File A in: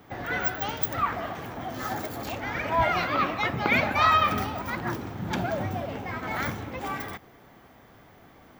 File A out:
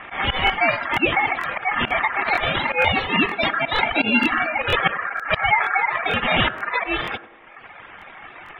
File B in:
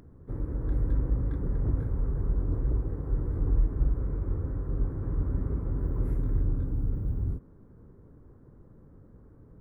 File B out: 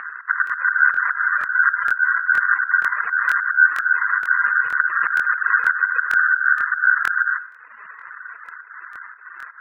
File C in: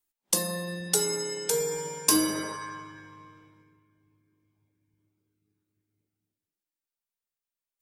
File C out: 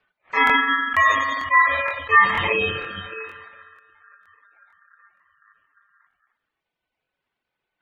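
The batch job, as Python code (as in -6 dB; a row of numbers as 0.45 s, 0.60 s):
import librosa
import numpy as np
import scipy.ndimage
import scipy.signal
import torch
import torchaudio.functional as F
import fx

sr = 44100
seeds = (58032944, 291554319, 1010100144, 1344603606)

y = fx.dereverb_blind(x, sr, rt60_s=1.3)
y = scipy.signal.sosfilt(scipy.signal.butter(2, 1600.0, 'lowpass', fs=sr, output='sos'), y)
y = fx.auto_swell(y, sr, attack_ms=142.0)
y = fx.spec_gate(y, sr, threshold_db=-25, keep='strong')
y = fx.peak_eq(y, sr, hz=660.0, db=2.0, octaves=0.77)
y = fx.hum_notches(y, sr, base_hz=50, count=4)
y = fx.rider(y, sr, range_db=4, speed_s=0.5)
y = y * np.sin(2.0 * np.pi * 1500.0 * np.arange(len(y)) / sr)
y = fx.echo_banded(y, sr, ms=96, feedback_pct=62, hz=430.0, wet_db=-13)
y = fx.buffer_crackle(y, sr, first_s=0.45, period_s=0.47, block=1024, kind='repeat')
y = librosa.util.normalize(y) * 10.0 ** (-3 / 20.0)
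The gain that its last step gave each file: +14.5 dB, +19.0 dB, +22.5 dB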